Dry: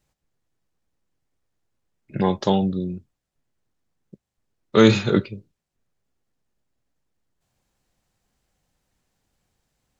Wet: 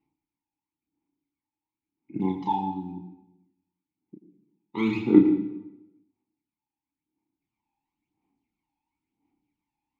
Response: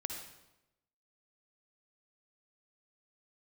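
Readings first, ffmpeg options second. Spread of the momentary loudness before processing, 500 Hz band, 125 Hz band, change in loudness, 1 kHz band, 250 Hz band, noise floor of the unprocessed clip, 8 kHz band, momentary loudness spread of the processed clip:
21 LU, -10.0 dB, -10.5 dB, -4.0 dB, -2.0 dB, -1.0 dB, -83 dBFS, no reading, 21 LU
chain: -filter_complex "[0:a]asplit=3[s0][s1][s2];[s0]bandpass=f=300:t=q:w=8,volume=1[s3];[s1]bandpass=f=870:t=q:w=8,volume=0.501[s4];[s2]bandpass=f=2240:t=q:w=8,volume=0.355[s5];[s3][s4][s5]amix=inputs=3:normalize=0,aphaser=in_gain=1:out_gain=1:delay=1.2:decay=0.73:speed=0.97:type=sinusoidal,asplit=2[s6][s7];[1:a]atrim=start_sample=2205,adelay=32[s8];[s7][s8]afir=irnorm=-1:irlink=0,volume=0.75[s9];[s6][s9]amix=inputs=2:normalize=0"

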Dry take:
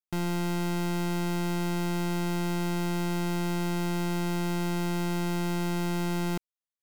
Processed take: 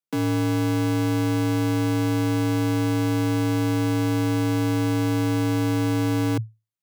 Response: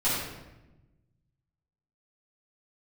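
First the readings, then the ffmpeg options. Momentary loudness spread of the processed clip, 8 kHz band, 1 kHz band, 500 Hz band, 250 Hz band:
0 LU, +3.0 dB, +3.5 dB, +6.5 dB, +7.5 dB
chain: -filter_complex "[0:a]lowshelf=f=150:g=7.5,asplit=2[s0][s1];[s1]acrusher=bits=5:dc=4:mix=0:aa=0.000001,volume=0.282[s2];[s0][s2]amix=inputs=2:normalize=0,afreqshift=110"

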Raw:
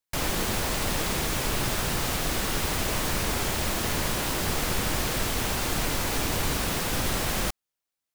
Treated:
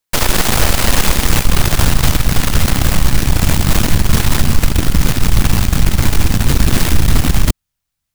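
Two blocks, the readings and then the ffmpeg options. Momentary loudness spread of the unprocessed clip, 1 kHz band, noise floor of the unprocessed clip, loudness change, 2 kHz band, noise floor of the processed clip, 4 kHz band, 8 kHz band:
0 LU, +8.5 dB, under -85 dBFS, +12.0 dB, +9.5 dB, -77 dBFS, +9.5 dB, +10.0 dB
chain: -af "asubboost=boost=10.5:cutoff=120,areverse,acompressor=threshold=0.126:ratio=16,areverse,aeval=exprs='0.237*(cos(1*acos(clip(val(0)/0.237,-1,1)))-cos(1*PI/2))+0.0841*(cos(6*acos(clip(val(0)/0.237,-1,1)))-cos(6*PI/2))+0.0188*(cos(7*acos(clip(val(0)/0.237,-1,1)))-cos(7*PI/2))':c=same,alimiter=level_in=7.08:limit=0.891:release=50:level=0:latency=1,volume=0.891"

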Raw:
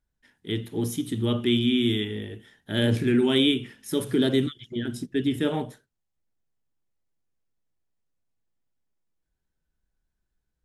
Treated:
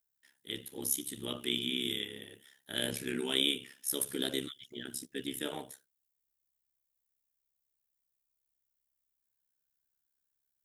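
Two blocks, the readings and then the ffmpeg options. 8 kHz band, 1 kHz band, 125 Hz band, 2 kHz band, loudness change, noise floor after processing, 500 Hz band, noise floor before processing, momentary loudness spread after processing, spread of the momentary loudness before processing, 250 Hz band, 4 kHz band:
+5.0 dB, -10.0 dB, -21.0 dB, -7.0 dB, -9.5 dB, -84 dBFS, -13.5 dB, -80 dBFS, 13 LU, 11 LU, -16.0 dB, -4.0 dB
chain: -af "tremolo=f=68:d=0.857,aemphasis=mode=production:type=riaa,volume=0.501"

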